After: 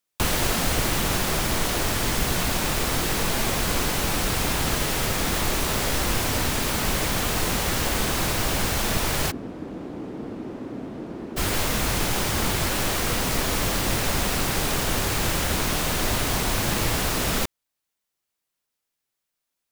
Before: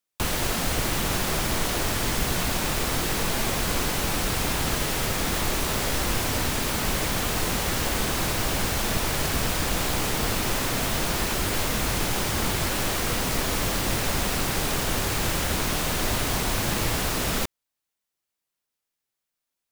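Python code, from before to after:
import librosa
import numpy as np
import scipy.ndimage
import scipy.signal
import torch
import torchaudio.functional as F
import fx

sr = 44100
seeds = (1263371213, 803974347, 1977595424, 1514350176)

y = fx.rider(x, sr, range_db=10, speed_s=2.0)
y = fx.bandpass_q(y, sr, hz=290.0, q=2.0, at=(9.3, 11.36), fade=0.02)
y = y * 10.0 ** (1.5 / 20.0)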